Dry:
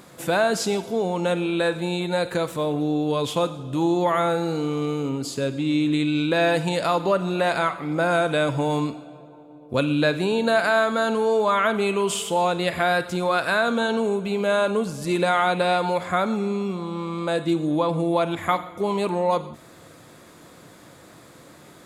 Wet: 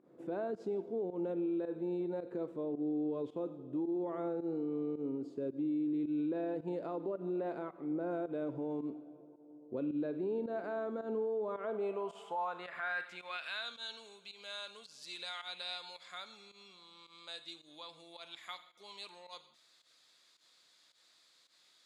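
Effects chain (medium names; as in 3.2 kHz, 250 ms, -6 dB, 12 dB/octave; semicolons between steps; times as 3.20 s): band-pass sweep 350 Hz -> 4.3 kHz, 11.44–13.83 s; volume shaper 109 bpm, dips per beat 1, -15 dB, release 108 ms; peak limiter -23 dBFS, peak gain reduction 7.5 dB; trim -6.5 dB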